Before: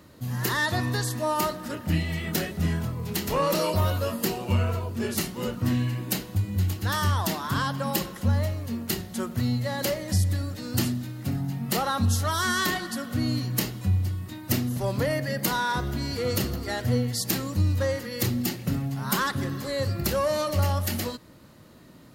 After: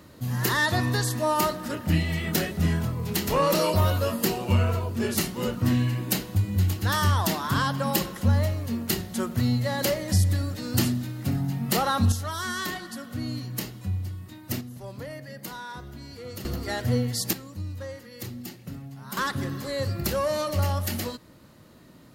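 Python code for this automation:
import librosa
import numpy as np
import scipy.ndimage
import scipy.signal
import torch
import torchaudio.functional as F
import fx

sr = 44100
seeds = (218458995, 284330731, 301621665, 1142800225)

y = fx.gain(x, sr, db=fx.steps((0.0, 2.0), (12.12, -5.5), (14.61, -12.0), (16.45, 0.0), (17.33, -11.0), (19.17, -1.0)))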